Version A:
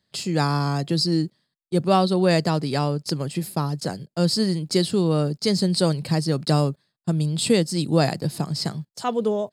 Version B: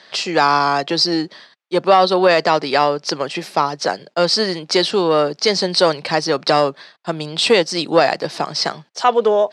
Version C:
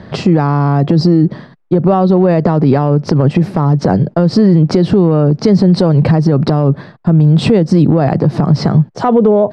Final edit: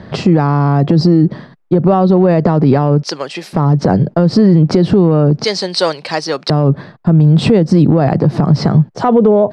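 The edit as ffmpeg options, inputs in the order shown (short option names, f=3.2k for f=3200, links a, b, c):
-filter_complex "[1:a]asplit=2[a][b];[2:a]asplit=3[c][d][e];[c]atrim=end=3.032[f];[a]atrim=start=3.028:end=3.532[g];[d]atrim=start=3.528:end=5.442[h];[b]atrim=start=5.438:end=6.502[i];[e]atrim=start=6.498[j];[f][g]acrossfade=d=0.004:c1=hsin:c2=hsin[k];[k][h]acrossfade=d=0.004:c1=hsin:c2=hsin[l];[l][i]acrossfade=d=0.004:c1=hsin:c2=hsin[m];[m][j]acrossfade=d=0.004:c1=hsin:c2=hsin"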